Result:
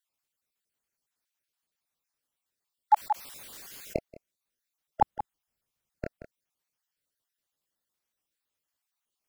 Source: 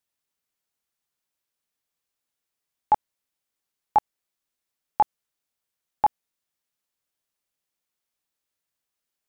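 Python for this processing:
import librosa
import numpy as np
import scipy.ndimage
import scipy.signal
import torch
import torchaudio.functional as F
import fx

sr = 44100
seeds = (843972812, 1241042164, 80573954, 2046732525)

y = fx.spec_dropout(x, sr, seeds[0], share_pct=39)
y = fx.low_shelf(y, sr, hz=240.0, db=10.5, at=(5.02, 6.05))
y = y + 10.0 ** (-12.0 / 20.0) * np.pad(y, (int(180 * sr / 1000.0), 0))[:len(y)]
y = fx.env_flatten(y, sr, amount_pct=70, at=(2.94, 3.98))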